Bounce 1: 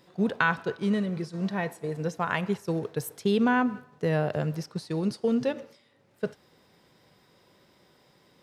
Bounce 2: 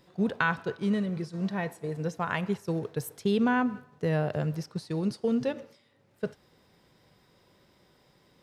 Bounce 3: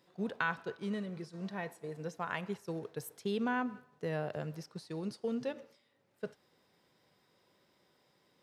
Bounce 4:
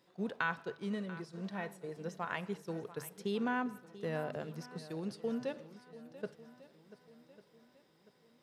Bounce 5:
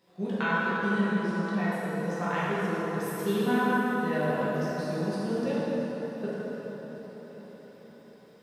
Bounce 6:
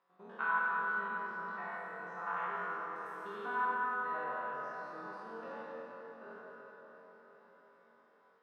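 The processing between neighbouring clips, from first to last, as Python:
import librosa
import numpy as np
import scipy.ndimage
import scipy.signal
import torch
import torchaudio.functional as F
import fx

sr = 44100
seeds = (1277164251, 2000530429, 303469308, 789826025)

y1 = fx.low_shelf(x, sr, hz=74.0, db=11.5)
y1 = y1 * 10.0 ** (-2.5 / 20.0)
y2 = fx.highpass(y1, sr, hz=240.0, slope=6)
y2 = y2 * 10.0 ** (-6.5 / 20.0)
y3 = fx.hum_notches(y2, sr, base_hz=50, count=3)
y3 = fx.echo_swing(y3, sr, ms=1147, ratio=1.5, feedback_pct=37, wet_db=-16)
y3 = y3 * 10.0 ** (-1.0 / 20.0)
y4 = fx.rev_plate(y3, sr, seeds[0], rt60_s=4.5, hf_ratio=0.55, predelay_ms=0, drr_db=-10.0)
y5 = fx.spec_steps(y4, sr, hold_ms=100)
y5 = fx.bandpass_q(y5, sr, hz=1200.0, q=3.3)
y5 = fx.room_flutter(y5, sr, wall_m=3.8, rt60_s=0.24)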